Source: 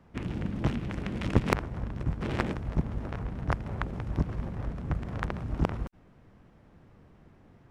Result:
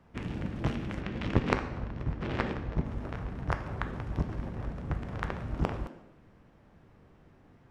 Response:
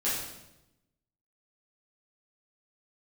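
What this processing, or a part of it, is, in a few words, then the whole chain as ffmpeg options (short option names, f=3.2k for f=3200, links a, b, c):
filtered reverb send: -filter_complex "[0:a]asplit=2[a][b];[b]highpass=f=220:w=0.5412,highpass=f=220:w=1.3066,lowpass=7.5k[c];[1:a]atrim=start_sample=2205[d];[c][d]afir=irnorm=-1:irlink=0,volume=-13dB[e];[a][e]amix=inputs=2:normalize=0,asettb=1/sr,asplit=3[f][g][h];[f]atrim=end=1.004[i];[g]atrim=start=1:end=2.85,asetpts=PTS-STARTPTS,afade=t=in:d=0.004:c=qsin,afade=t=out:st=1.846:d=0.004:c=qsin,lowpass=5.3k[j];[h]atrim=start=2.846[k];[i][j]acrossfade=d=0.004:c1=hsin:c2=qsin[l];[l][k]acrossfade=d=0.004:c1=qsin:c2=hsin,volume=-2.5dB"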